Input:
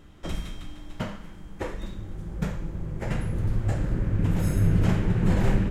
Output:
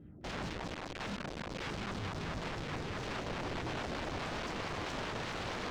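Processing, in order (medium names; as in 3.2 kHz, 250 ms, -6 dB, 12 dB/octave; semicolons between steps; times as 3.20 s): high-pass 66 Hz 12 dB/octave; band-stop 1.1 kHz, Q 9.3; level-controlled noise filter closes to 1.1 kHz, open at -21.5 dBFS; ten-band graphic EQ 125 Hz +7 dB, 250 Hz +6 dB, 1 kHz -11 dB, 8 kHz +8 dB; in parallel at -5.5 dB: companded quantiser 2-bit; on the sum: saturation -16 dBFS, distortion -3 dB; LFO low-pass saw down 4.7 Hz 500–7400 Hz; integer overflow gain 28 dB; distance through air 140 m; trim -4.5 dB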